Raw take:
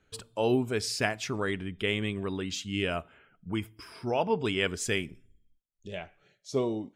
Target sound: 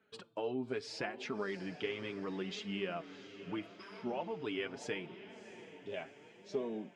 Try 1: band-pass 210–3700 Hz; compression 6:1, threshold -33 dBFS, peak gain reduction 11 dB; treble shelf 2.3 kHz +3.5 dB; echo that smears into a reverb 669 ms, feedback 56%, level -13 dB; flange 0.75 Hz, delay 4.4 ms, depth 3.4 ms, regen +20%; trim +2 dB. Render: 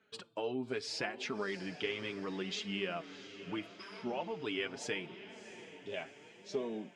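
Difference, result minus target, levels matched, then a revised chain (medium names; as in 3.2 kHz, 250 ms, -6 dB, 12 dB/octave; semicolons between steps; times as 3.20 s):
4 kHz band +3.5 dB
band-pass 210–3700 Hz; compression 6:1, threshold -33 dBFS, peak gain reduction 11 dB; treble shelf 2.3 kHz -3.5 dB; echo that smears into a reverb 669 ms, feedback 56%, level -13 dB; flange 0.75 Hz, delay 4.4 ms, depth 3.4 ms, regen +20%; trim +2 dB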